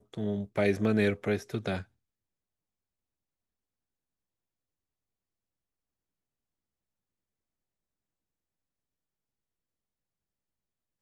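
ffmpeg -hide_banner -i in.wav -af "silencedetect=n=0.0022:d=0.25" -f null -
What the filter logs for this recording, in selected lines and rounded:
silence_start: 1.85
silence_end: 11.01 | silence_duration: 9.16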